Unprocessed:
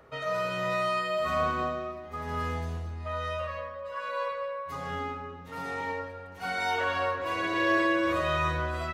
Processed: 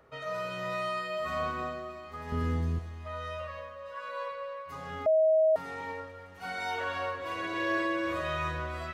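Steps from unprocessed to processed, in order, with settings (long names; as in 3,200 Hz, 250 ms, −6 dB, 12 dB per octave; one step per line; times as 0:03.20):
0:02.32–0:02.79: low shelf with overshoot 450 Hz +9 dB, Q 1.5
delay with a high-pass on its return 311 ms, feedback 69%, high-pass 1,700 Hz, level −13 dB
0:05.06–0:05.56: beep over 634 Hz −15 dBFS
level −5 dB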